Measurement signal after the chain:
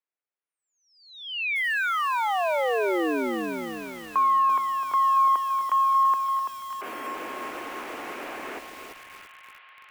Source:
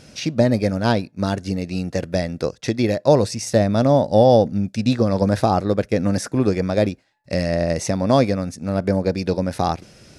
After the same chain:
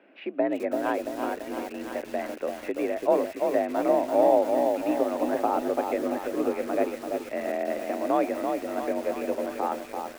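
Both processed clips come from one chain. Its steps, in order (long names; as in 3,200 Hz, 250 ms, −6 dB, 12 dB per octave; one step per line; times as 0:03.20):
delay with a high-pass on its return 337 ms, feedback 79%, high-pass 2,000 Hz, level −4 dB
single-sideband voice off tune +51 Hz 230–2,600 Hz
feedback echo at a low word length 337 ms, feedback 55%, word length 6 bits, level −3.5 dB
level −7.5 dB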